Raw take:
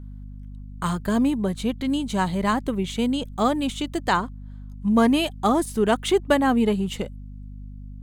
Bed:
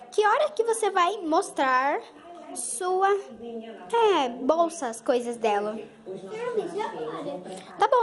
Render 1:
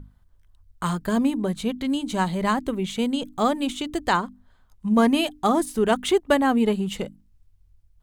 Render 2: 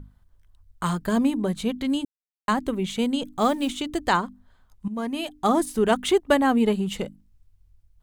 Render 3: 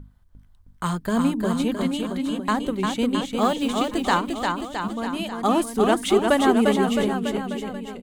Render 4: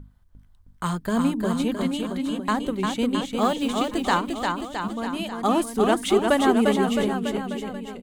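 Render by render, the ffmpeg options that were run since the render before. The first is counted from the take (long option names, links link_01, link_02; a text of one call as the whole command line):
ffmpeg -i in.wav -af "bandreject=frequency=50:width_type=h:width=6,bandreject=frequency=100:width_type=h:width=6,bandreject=frequency=150:width_type=h:width=6,bandreject=frequency=200:width_type=h:width=6,bandreject=frequency=250:width_type=h:width=6,bandreject=frequency=300:width_type=h:width=6" out.wav
ffmpeg -i in.wav -filter_complex "[0:a]asettb=1/sr,asplit=3[link_01][link_02][link_03];[link_01]atrim=end=3.414[link_04];[link_02]atrim=start=3.41:end=3.81,asetpts=PTS-STARTPTS,afade=type=in:duration=0.004:curve=qsin,afade=type=out:start_time=0.396:duration=0.004:curve=qsin,acrusher=bits=7:mode=log:mix=0:aa=0.000001[link_05];[link_03]atrim=start=3.806[link_06];[link_04][link_05]acrossfade=duration=0.004:curve1=hsin:curve2=qsin[link_07];[link_07][link_06]acrossfade=duration=0.004:curve1=qsin:curve2=hsin,asplit=4[link_08][link_09][link_10][link_11];[link_08]atrim=end=2.05,asetpts=PTS-STARTPTS,afade=type=out:start_time=2.046:duration=0.004:curve=hsin[link_12];[link_09]atrim=start=2.05:end=2.48,asetpts=PTS-STARTPTS,volume=0[link_13];[link_10]atrim=start=2.48:end=4.88,asetpts=PTS-STARTPTS,afade=type=in:duration=0.004:curve=hsin,afade=type=out:start_time=2.396:duration=0.004:curve=hsin:silence=0.223872[link_14];[link_11]atrim=start=4.88,asetpts=PTS-STARTPTS,afade=type=in:duration=0.62:curve=qua:silence=0.223872[link_15];[link_12][link_13][link_14][link_15]concat=n=4:v=0:a=1" out.wav
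ffmpeg -i in.wav -af "aecho=1:1:350|665|948.5|1204|1433:0.631|0.398|0.251|0.158|0.1" out.wav
ffmpeg -i in.wav -af "volume=-1dB" out.wav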